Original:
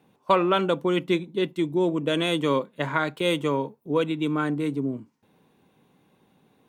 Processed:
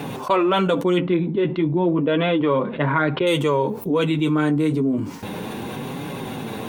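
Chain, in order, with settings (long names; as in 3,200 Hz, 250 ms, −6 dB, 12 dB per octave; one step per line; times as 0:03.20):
0:00.98–0:03.27: Gaussian smoothing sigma 3 samples
flanger 0.33 Hz, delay 6.9 ms, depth 6.4 ms, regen −19%
envelope flattener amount 70%
level +2.5 dB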